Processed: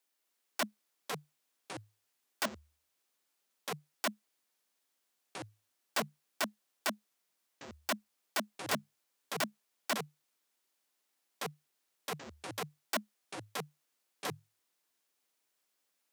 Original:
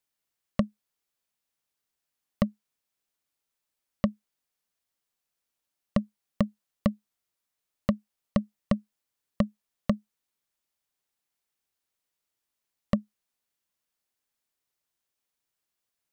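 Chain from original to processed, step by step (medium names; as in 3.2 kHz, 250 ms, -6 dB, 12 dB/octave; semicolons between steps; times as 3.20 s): integer overflow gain 28 dB; steep high-pass 240 Hz 36 dB/octave; ever faster or slower copies 256 ms, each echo -6 st, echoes 3, each echo -6 dB; trim +3 dB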